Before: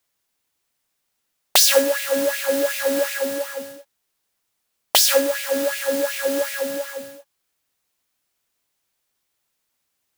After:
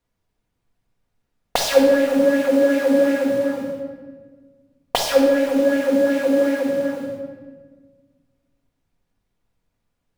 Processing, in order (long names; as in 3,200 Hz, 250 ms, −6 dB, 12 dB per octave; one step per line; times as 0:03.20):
spectral tilt −4 dB per octave
convolution reverb RT60 1.5 s, pre-delay 4 ms, DRR 0 dB
level −1.5 dB